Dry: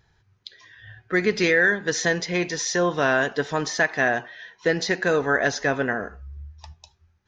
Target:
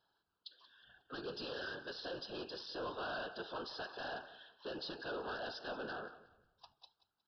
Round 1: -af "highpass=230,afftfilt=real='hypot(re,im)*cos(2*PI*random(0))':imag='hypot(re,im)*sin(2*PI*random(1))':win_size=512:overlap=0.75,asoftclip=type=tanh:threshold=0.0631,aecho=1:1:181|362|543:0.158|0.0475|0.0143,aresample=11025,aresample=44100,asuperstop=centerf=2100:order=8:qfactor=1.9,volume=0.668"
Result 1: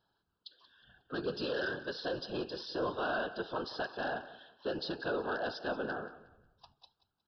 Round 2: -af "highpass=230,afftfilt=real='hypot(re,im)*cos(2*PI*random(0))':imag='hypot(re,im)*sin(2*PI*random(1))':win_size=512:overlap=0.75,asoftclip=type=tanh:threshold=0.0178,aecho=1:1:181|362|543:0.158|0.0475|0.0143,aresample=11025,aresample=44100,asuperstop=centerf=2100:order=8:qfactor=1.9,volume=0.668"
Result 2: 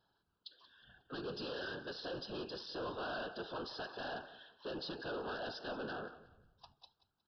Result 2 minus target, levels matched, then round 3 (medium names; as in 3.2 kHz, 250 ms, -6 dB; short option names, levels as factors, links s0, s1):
250 Hz band +2.5 dB
-af "highpass=230,lowshelf=f=290:g=-10.5,afftfilt=real='hypot(re,im)*cos(2*PI*random(0))':imag='hypot(re,im)*sin(2*PI*random(1))':win_size=512:overlap=0.75,asoftclip=type=tanh:threshold=0.0178,aecho=1:1:181|362|543:0.158|0.0475|0.0143,aresample=11025,aresample=44100,asuperstop=centerf=2100:order=8:qfactor=1.9,volume=0.668"